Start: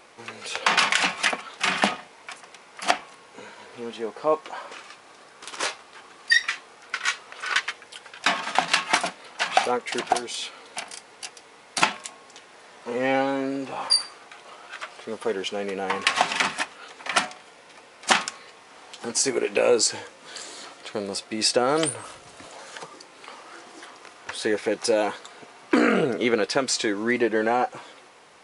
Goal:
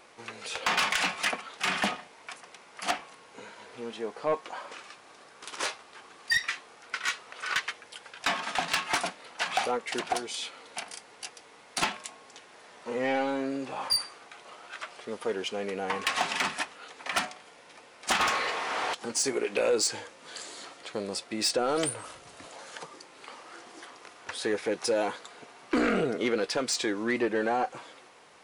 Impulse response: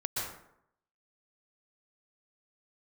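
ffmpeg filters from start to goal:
-filter_complex "[0:a]asplit=3[s0][s1][s2];[s0]afade=t=out:st=18.19:d=0.02[s3];[s1]asplit=2[s4][s5];[s5]highpass=f=720:p=1,volume=35.5,asoftclip=type=tanh:threshold=0.398[s6];[s4][s6]amix=inputs=2:normalize=0,lowpass=f=2100:p=1,volume=0.501,afade=t=in:st=18.19:d=0.02,afade=t=out:st=18.93:d=0.02[s7];[s2]afade=t=in:st=18.93:d=0.02[s8];[s3][s7][s8]amix=inputs=3:normalize=0,asoftclip=type=tanh:threshold=0.178,volume=0.668"

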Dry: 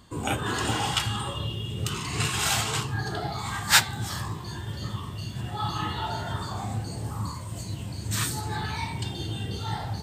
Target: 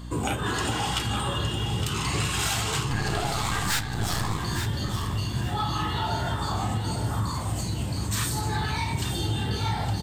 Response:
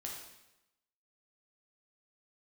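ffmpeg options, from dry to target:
-filter_complex "[0:a]acompressor=threshold=0.0282:ratio=6,aeval=exprs='val(0)+0.00631*(sin(2*PI*60*n/s)+sin(2*PI*2*60*n/s)/2+sin(2*PI*3*60*n/s)/3+sin(2*PI*4*60*n/s)/4+sin(2*PI*5*60*n/s)/5)':c=same,asettb=1/sr,asplit=3[s0][s1][s2];[s0]atrim=end=2.904[s3];[s1]atrim=start=2.9:end=4.37,asetpts=PTS-STARTPTS,afade=t=in:d=0.004:c=qsin,afade=t=out:st=1.466:d=0.004:c=qsin,aeval=exprs='0.126*(cos(1*acos(clip(val(0)/0.126,-1,1)))-cos(1*PI/2))+0.0224*(cos(6*acos(clip(val(0)/0.126,-1,1)))-cos(6*PI/2))':c=same[s4];[s2]atrim=start=4.366[s5];[s3][s4]acrossfade=d=0.004:c1=hsin:c2=qsin[s6];[s6][s5]acrossfade=d=0.004:c1=qsin:c2=hsin,asoftclip=type=tanh:threshold=0.0596,asplit=2[s7][s8];[s8]aecho=0:1:863|1726|2589:0.376|0.0827|0.0182[s9];[s7][s9]amix=inputs=2:normalize=0,volume=2.37"

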